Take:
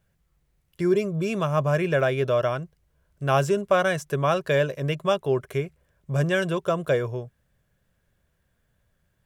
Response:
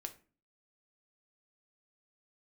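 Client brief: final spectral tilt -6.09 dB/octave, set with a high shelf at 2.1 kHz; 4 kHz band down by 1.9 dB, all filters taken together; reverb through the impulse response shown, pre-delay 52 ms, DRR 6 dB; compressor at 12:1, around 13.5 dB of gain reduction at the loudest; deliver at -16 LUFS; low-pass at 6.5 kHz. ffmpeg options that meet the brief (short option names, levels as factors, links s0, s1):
-filter_complex "[0:a]lowpass=6500,highshelf=f=2100:g=4.5,equalizer=f=4000:t=o:g=-7,acompressor=threshold=0.0355:ratio=12,asplit=2[s0][s1];[1:a]atrim=start_sample=2205,adelay=52[s2];[s1][s2]afir=irnorm=-1:irlink=0,volume=0.708[s3];[s0][s3]amix=inputs=2:normalize=0,volume=7.5"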